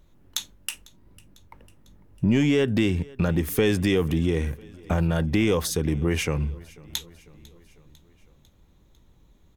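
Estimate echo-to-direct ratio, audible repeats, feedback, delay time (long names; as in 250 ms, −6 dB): −21.5 dB, 3, 59%, 499 ms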